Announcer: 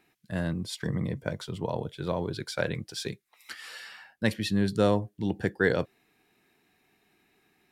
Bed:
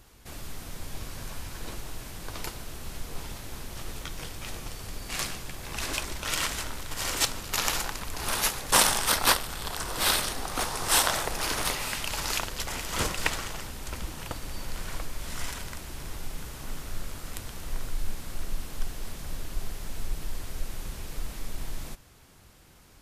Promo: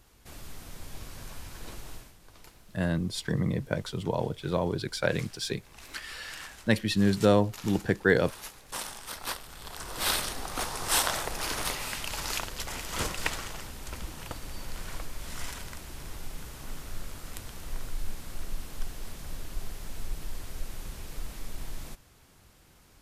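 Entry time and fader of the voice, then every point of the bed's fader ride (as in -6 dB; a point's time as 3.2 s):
2.45 s, +2.0 dB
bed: 1.95 s -4.5 dB
2.17 s -16.5 dB
9.02 s -16.5 dB
10.12 s -3 dB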